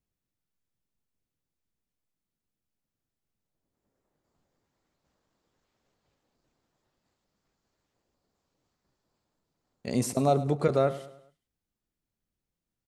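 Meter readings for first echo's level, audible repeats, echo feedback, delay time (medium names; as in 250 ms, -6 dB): -16.0 dB, 3, 44%, 104 ms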